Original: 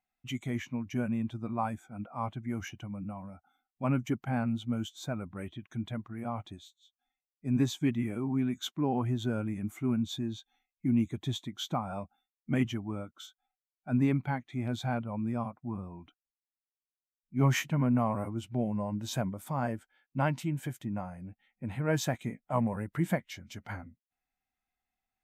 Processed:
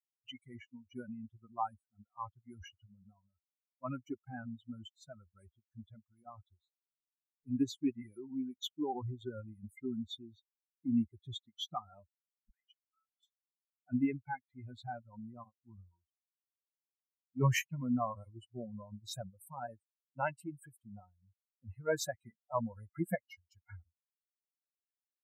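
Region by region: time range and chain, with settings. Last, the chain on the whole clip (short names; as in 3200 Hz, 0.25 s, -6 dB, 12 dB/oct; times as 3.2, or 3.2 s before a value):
12.5–13.23 compressor 10:1, threshold -33 dBFS + ladder high-pass 1100 Hz, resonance 35%
whole clip: per-bin expansion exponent 3; dynamic EQ 170 Hz, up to -6 dB, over -51 dBFS, Q 1.9; gain +2 dB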